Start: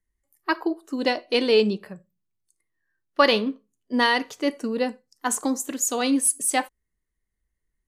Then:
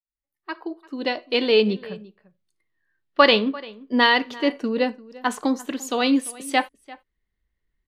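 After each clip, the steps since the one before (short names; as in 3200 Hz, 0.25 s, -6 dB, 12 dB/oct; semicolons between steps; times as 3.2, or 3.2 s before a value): opening faded in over 1.91 s; resonant high shelf 5300 Hz -12.5 dB, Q 1.5; outdoor echo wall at 59 m, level -20 dB; gain +2.5 dB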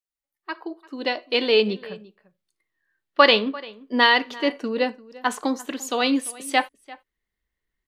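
low shelf 230 Hz -9 dB; gain +1 dB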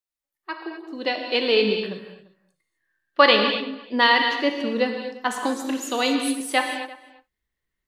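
non-linear reverb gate 0.28 s flat, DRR 3.5 dB; gain -1 dB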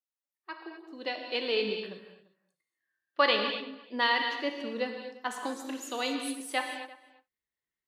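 HPF 230 Hz 6 dB/oct; gain -9 dB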